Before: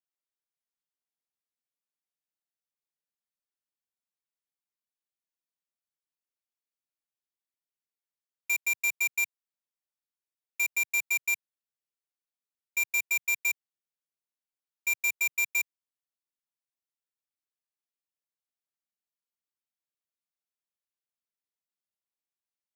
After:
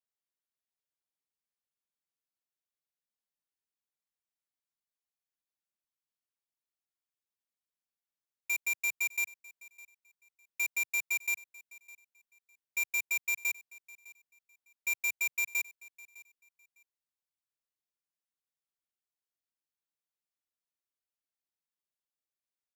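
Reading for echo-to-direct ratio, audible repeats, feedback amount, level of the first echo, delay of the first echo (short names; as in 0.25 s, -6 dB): -21.0 dB, 2, 21%, -21.0 dB, 0.606 s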